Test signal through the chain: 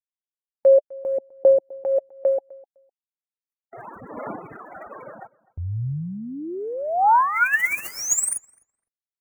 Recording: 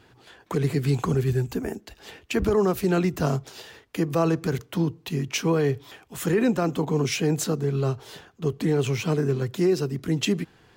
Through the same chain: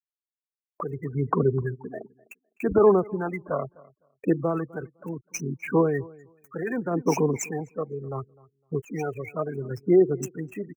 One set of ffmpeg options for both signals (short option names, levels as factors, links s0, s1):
-filter_complex "[0:a]acrossover=split=6400[s0][s1];[s1]acompressor=threshold=0.00562:ratio=4:attack=1:release=60[s2];[s0][s2]amix=inputs=2:normalize=0,highpass=f=510:p=1,acrossover=split=2600[s3][s4];[s3]adelay=290[s5];[s5][s4]amix=inputs=2:normalize=0,afftfilt=real='re*gte(hypot(re,im),0.0398)':imag='im*gte(hypot(re,im),0.0398)':win_size=1024:overlap=0.75,highshelf=f=5800:g=7.5,aphaser=in_gain=1:out_gain=1:delay=1.8:decay=0.64:speed=0.7:type=sinusoidal,agate=range=0.112:threshold=0.00501:ratio=16:detection=peak,acrossover=split=2500[s6][s7];[s7]acrusher=bits=3:mode=log:mix=0:aa=0.000001[s8];[s6][s8]amix=inputs=2:normalize=0,asuperstop=centerf=3800:order=8:qfactor=1,asplit=2[s9][s10];[s10]adelay=254,lowpass=f=2800:p=1,volume=0.0708,asplit=2[s11][s12];[s12]adelay=254,lowpass=f=2800:p=1,volume=0.17[s13];[s11][s13]amix=inputs=2:normalize=0[s14];[s9][s14]amix=inputs=2:normalize=0"